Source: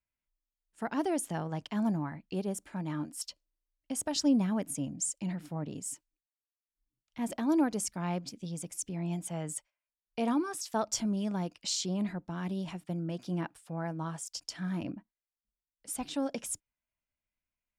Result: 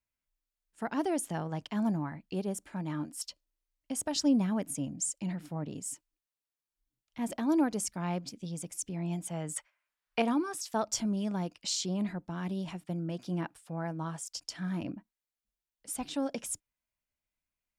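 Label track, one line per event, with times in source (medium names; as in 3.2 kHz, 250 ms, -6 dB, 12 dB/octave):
9.560000	10.220000	peaking EQ 1.5 kHz +14.5 dB 2.4 oct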